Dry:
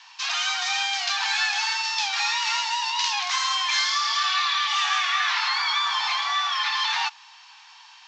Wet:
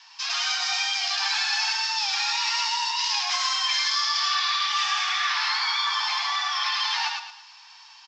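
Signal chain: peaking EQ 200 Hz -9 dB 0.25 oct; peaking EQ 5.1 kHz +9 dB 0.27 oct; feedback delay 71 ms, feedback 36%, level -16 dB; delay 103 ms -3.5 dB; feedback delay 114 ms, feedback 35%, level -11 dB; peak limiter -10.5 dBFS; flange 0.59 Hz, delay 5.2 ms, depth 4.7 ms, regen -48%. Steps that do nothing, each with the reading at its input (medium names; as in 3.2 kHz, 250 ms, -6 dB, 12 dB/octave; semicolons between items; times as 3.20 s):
peaking EQ 200 Hz: input has nothing below 680 Hz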